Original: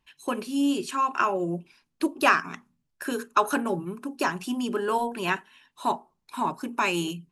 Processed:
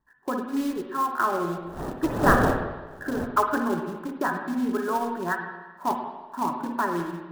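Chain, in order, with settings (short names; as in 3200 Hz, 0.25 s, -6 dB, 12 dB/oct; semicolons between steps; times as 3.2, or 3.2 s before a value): 1.56–3.26 wind noise 590 Hz -27 dBFS; Chebyshev low-pass 1900 Hz, order 10; reverb removal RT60 0.62 s; short-mantissa float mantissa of 2-bit; spring tank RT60 1.2 s, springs 51/55/59 ms, chirp 60 ms, DRR 3.5 dB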